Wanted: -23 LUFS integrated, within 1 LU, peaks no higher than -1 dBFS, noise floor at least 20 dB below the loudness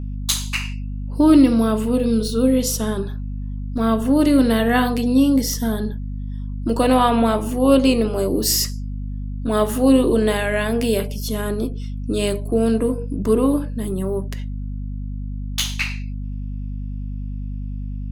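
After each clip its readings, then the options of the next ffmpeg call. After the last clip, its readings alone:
hum 50 Hz; harmonics up to 250 Hz; hum level -25 dBFS; loudness -19.5 LUFS; peak -2.0 dBFS; loudness target -23.0 LUFS
-> -af "bandreject=f=50:t=h:w=4,bandreject=f=100:t=h:w=4,bandreject=f=150:t=h:w=4,bandreject=f=200:t=h:w=4,bandreject=f=250:t=h:w=4"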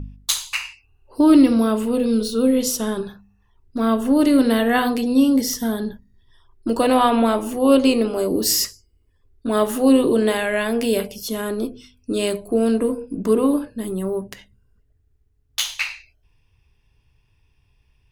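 hum none; loudness -19.5 LUFS; peak -2.5 dBFS; loudness target -23.0 LUFS
-> -af "volume=-3.5dB"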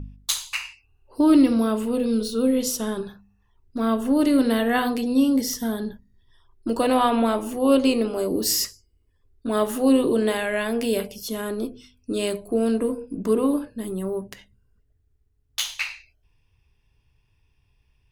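loudness -23.0 LUFS; peak -6.0 dBFS; noise floor -66 dBFS

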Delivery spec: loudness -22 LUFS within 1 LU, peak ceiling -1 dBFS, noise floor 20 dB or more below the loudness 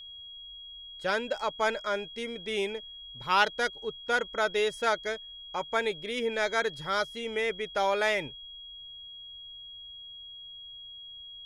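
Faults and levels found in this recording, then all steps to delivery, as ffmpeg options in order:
steady tone 3300 Hz; tone level -43 dBFS; loudness -30.0 LUFS; peak -9.5 dBFS; loudness target -22.0 LUFS
-> -af "bandreject=f=3.3k:w=30"
-af "volume=8dB"

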